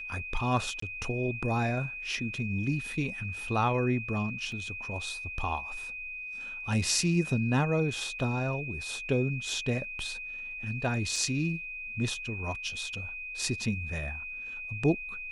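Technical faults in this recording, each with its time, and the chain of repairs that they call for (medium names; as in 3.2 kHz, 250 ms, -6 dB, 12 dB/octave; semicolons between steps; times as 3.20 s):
whine 2.5 kHz -37 dBFS
0.80–0.82 s: dropout 24 ms
4.52 s: dropout 2.3 ms
8.19 s: dropout 4.3 ms
11.16 s: dropout 2.9 ms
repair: band-stop 2.5 kHz, Q 30; interpolate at 0.80 s, 24 ms; interpolate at 4.52 s, 2.3 ms; interpolate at 8.19 s, 4.3 ms; interpolate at 11.16 s, 2.9 ms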